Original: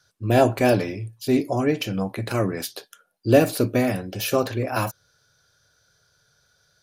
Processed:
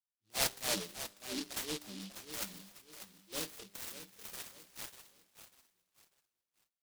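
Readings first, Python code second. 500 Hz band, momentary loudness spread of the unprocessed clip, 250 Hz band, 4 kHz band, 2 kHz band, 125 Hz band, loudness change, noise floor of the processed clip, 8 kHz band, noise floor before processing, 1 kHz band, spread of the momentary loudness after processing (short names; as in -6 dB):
-26.0 dB, 13 LU, -25.0 dB, -6.0 dB, -15.0 dB, -30.0 dB, -17.0 dB, under -85 dBFS, -3.5 dB, -68 dBFS, -21.0 dB, 22 LU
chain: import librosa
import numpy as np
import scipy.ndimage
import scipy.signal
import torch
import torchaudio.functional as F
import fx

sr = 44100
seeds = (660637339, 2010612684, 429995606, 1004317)

p1 = fx.noise_reduce_blind(x, sr, reduce_db=24)
p2 = fx.transient(p1, sr, attack_db=-11, sustain_db=7)
p3 = fx.filter_sweep_bandpass(p2, sr, from_hz=890.0, to_hz=2600.0, start_s=2.12, end_s=3.13, q=2.2)
p4 = np.clip(p3, -10.0 ** (-30.5 / 20.0), 10.0 ** (-30.5 / 20.0))
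p5 = p3 + F.gain(torch.from_numpy(p4), -5.0).numpy()
p6 = fx.env_phaser(p5, sr, low_hz=570.0, high_hz=3400.0, full_db=-39.5)
p7 = fx.air_absorb(p6, sr, metres=160.0)
p8 = fx.comb_fb(p7, sr, f0_hz=100.0, decay_s=1.3, harmonics='all', damping=0.0, mix_pct=50)
p9 = p8 + fx.echo_feedback(p8, sr, ms=594, feedback_pct=31, wet_db=-11.0, dry=0)
p10 = fx.noise_mod_delay(p9, sr, seeds[0], noise_hz=3900.0, depth_ms=0.35)
y = F.gain(torch.from_numpy(p10), 2.5).numpy()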